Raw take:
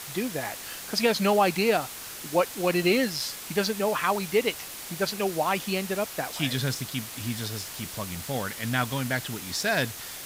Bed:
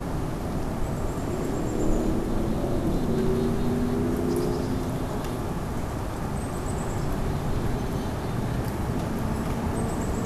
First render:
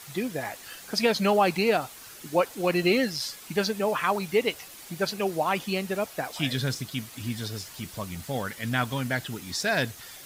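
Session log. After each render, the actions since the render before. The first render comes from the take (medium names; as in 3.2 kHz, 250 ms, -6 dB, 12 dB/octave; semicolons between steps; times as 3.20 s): noise reduction 8 dB, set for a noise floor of -40 dBFS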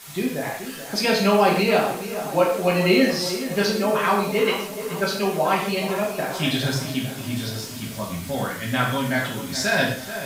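on a send: tape echo 430 ms, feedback 61%, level -9.5 dB, low-pass 1.9 kHz; on the sum: gated-style reverb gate 200 ms falling, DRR -3.5 dB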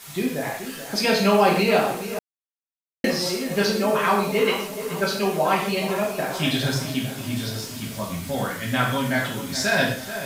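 2.19–3.04 s: mute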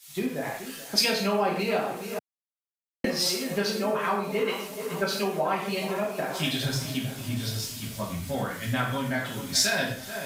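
compression 4:1, threshold -25 dBFS, peak gain reduction 10.5 dB; three bands expanded up and down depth 100%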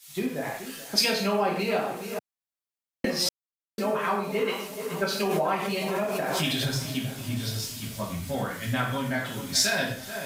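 3.29–3.78 s: mute; 5.20–6.66 s: swell ahead of each attack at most 22 dB/s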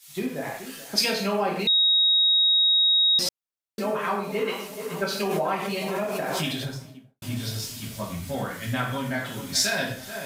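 1.67–3.19 s: bleep 3.78 kHz -16.5 dBFS; 6.32–7.22 s: studio fade out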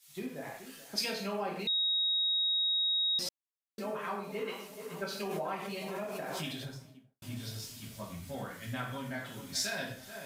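trim -10.5 dB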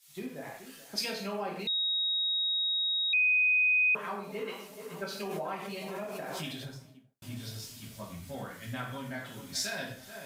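3.13–3.95 s: bleep 2.5 kHz -22 dBFS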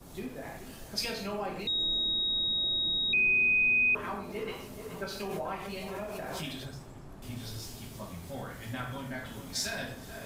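add bed -20.5 dB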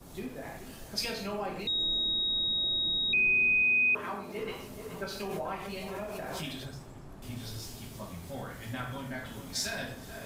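3.62–4.38 s: high-pass 160 Hz 6 dB/octave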